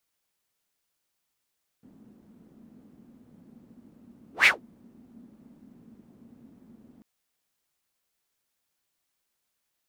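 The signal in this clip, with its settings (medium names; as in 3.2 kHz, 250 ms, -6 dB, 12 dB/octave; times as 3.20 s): whoosh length 5.19 s, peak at 2.63 s, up 0.14 s, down 0.15 s, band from 230 Hz, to 2.4 kHz, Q 5.6, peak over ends 37.5 dB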